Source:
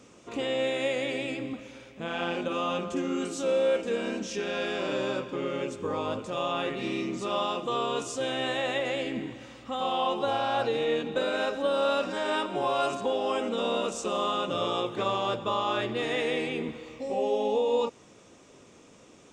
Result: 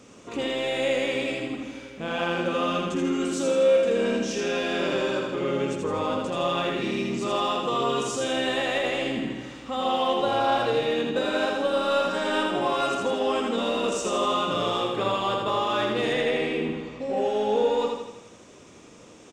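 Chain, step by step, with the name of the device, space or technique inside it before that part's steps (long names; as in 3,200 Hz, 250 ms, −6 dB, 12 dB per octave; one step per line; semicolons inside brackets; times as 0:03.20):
parallel distortion (in parallel at −7.5 dB: hard clipping −30 dBFS, distortion −8 dB)
0:14.82–0:15.49: on the sum: notch filter 6,000 Hz, Q 5.4
0:16.13–0:17.17: high-shelf EQ 5,500 Hz −9.5 dB
repeating echo 81 ms, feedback 53%, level −3.5 dB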